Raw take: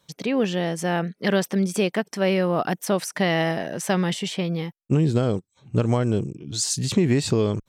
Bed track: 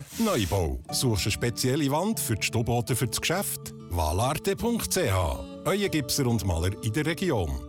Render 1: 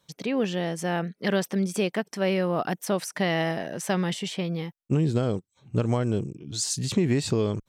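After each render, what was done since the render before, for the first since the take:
level −3.5 dB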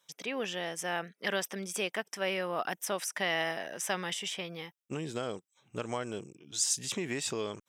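high-pass filter 1,200 Hz 6 dB per octave
notch filter 4,300 Hz, Q 5.1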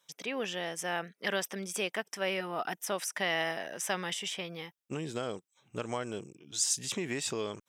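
0:02.40–0:02.88: notch comb filter 550 Hz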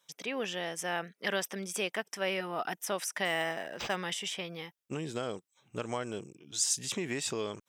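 0:03.25–0:03.96: linearly interpolated sample-rate reduction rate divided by 4×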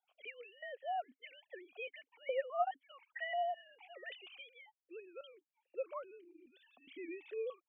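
three sine waves on the formant tracks
formant filter that steps through the vowels 4.8 Hz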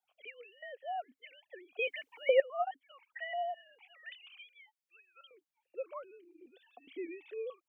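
0:01.79–0:02.40: clip gain +11 dB
0:03.79–0:05.31: high-pass filter 1,000 Hz 24 dB per octave
0:06.41–0:07.07: hollow resonant body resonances 480/710 Hz, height 16 dB, ringing for 30 ms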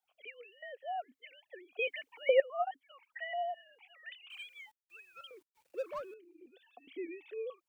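0:04.30–0:06.14: mu-law and A-law mismatch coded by mu

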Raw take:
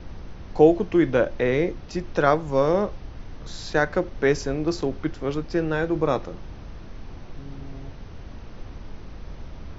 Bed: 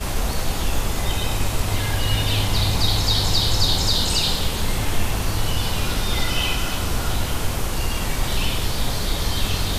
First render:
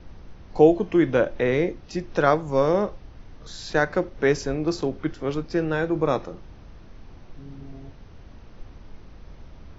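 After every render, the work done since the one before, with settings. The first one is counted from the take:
noise reduction from a noise print 6 dB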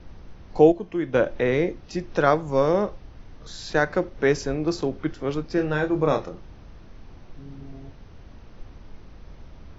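0:00.72–0:01.14: clip gain −7.5 dB
0:05.55–0:06.29: double-tracking delay 27 ms −6 dB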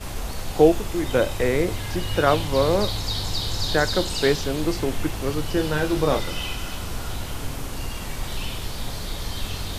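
mix in bed −7.5 dB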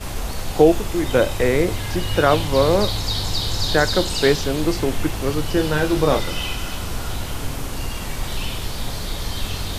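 level +3.5 dB
brickwall limiter −2 dBFS, peak gain reduction 2.5 dB

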